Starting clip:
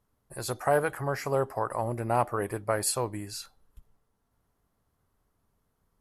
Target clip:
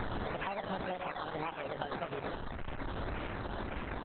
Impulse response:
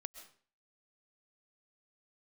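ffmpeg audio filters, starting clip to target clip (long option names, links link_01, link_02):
-filter_complex "[0:a]aeval=exprs='val(0)+0.5*0.0447*sgn(val(0))':channel_layout=same,equalizer=frequency=110:width=2.9:gain=-8,asplit=2[link_01][link_02];[link_02]aecho=0:1:158|316|474|632|790|948|1106:0.316|0.183|0.106|0.0617|0.0358|0.0208|0.012[link_03];[link_01][link_03]amix=inputs=2:normalize=0,acrusher=samples=20:mix=1:aa=0.000001:lfo=1:lforange=12:lforate=1.2,bandreject=frequency=60:width_type=h:width=6,bandreject=frequency=120:width_type=h:width=6,bandreject=frequency=180:width_type=h:width=6,bandreject=frequency=240:width_type=h:width=6,bandreject=frequency=300:width_type=h:width=6,bandreject=frequency=360:width_type=h:width=6,bandreject=frequency=420:width_type=h:width=6,atempo=1.1,highshelf=frequency=4200:gain=-10.5,acompressor=threshold=-37dB:ratio=10,asetrate=59535,aresample=44100,volume=4dB" -ar 48000 -c:a libopus -b:a 8k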